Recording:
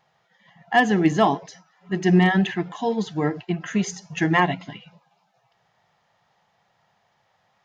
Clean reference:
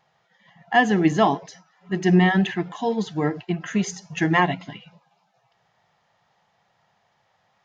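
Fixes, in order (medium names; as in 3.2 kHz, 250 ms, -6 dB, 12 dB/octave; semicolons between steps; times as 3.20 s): clip repair -7.5 dBFS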